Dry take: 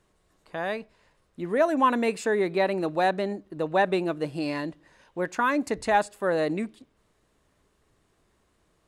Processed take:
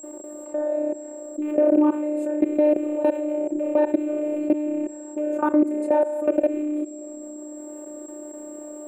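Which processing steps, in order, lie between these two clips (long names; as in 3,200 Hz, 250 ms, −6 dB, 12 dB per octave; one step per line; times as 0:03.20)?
loose part that buzzes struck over −35 dBFS, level −19 dBFS
elliptic high-pass filter 160 Hz, stop band 40 dB
flutter between parallel walls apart 5.3 metres, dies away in 0.48 s
on a send at −23.5 dB: convolution reverb RT60 1.5 s, pre-delay 7 ms
on the sum: phases set to zero 300 Hz
output level in coarse steps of 24 dB
steady tone 7,600 Hz −57 dBFS
drawn EQ curve 730 Hz 0 dB, 5,400 Hz −22 dB, 8,900 Hz −4 dB
brickwall limiter −21 dBFS, peak gain reduction 6 dB
dynamic equaliser 620 Hz, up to −7 dB, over −45 dBFS
hollow resonant body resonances 360/560 Hz, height 18 dB, ringing for 30 ms
envelope flattener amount 50%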